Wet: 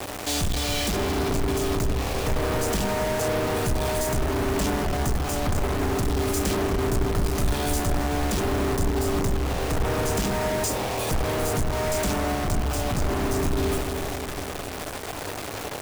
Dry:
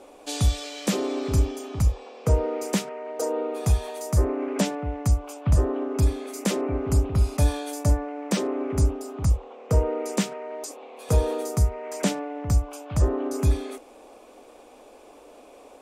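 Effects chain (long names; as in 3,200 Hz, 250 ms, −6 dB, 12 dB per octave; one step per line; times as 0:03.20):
sub-octave generator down 2 octaves, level +1 dB
hum removal 66.55 Hz, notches 7
in parallel at 0 dB: downward compressor, threshold −28 dBFS, peak gain reduction 15.5 dB
on the sum: log-companded quantiser 2 bits
wrap-around overflow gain 7 dB
notch filter 520 Hz, Q 15
feedback echo with a low-pass in the loop 269 ms, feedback 65%, low-pass 2,000 Hz, level −7.5 dB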